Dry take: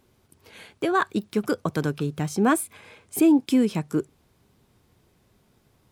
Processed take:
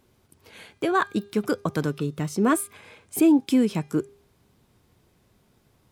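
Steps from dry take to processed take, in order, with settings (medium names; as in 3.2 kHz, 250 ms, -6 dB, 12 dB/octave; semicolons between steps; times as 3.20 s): 1.85–2.53 s: comb of notches 800 Hz; de-hum 403.4 Hz, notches 16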